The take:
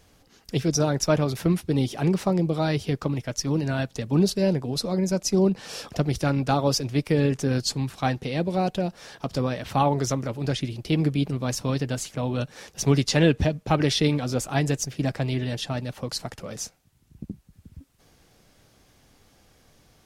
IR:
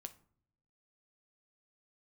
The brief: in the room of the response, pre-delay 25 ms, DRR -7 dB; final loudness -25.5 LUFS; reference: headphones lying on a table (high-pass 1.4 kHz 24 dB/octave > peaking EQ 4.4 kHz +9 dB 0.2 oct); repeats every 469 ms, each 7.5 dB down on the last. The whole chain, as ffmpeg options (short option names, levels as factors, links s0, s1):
-filter_complex "[0:a]aecho=1:1:469|938|1407|1876|2345:0.422|0.177|0.0744|0.0312|0.0131,asplit=2[s0][s1];[1:a]atrim=start_sample=2205,adelay=25[s2];[s1][s2]afir=irnorm=-1:irlink=0,volume=4.22[s3];[s0][s3]amix=inputs=2:normalize=0,highpass=f=1400:w=0.5412,highpass=f=1400:w=1.3066,equalizer=f=4400:t=o:w=0.2:g=9,volume=0.75"